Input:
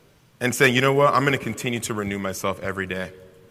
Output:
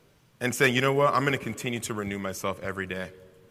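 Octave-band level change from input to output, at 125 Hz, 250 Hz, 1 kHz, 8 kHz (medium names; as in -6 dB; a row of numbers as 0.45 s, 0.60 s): -5.0 dB, -5.0 dB, -5.0 dB, -5.0 dB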